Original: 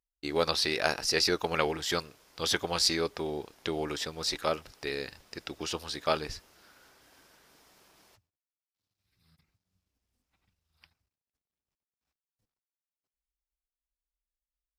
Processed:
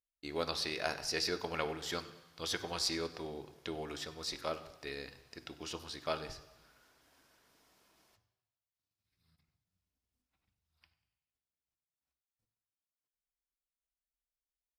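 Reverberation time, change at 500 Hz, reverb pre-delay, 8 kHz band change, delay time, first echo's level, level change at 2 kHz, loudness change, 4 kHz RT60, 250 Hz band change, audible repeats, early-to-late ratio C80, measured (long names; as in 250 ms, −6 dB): 1.1 s, −8.0 dB, 3 ms, −8.0 dB, 96 ms, −21.0 dB, −8.0 dB, −8.0 dB, 1.1 s, −7.5 dB, 3, 15.0 dB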